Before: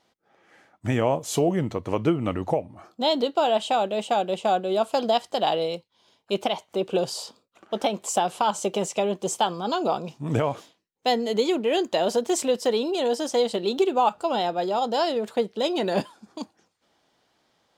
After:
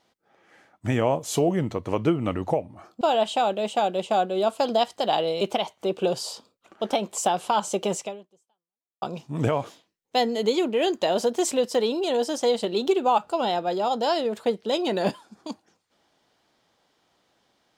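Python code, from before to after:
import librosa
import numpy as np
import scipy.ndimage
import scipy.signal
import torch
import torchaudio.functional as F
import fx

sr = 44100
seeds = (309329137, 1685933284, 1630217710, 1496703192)

y = fx.edit(x, sr, fx.cut(start_s=3.01, length_s=0.34),
    fx.cut(start_s=5.75, length_s=0.57),
    fx.fade_out_span(start_s=8.91, length_s=1.02, curve='exp'), tone=tone)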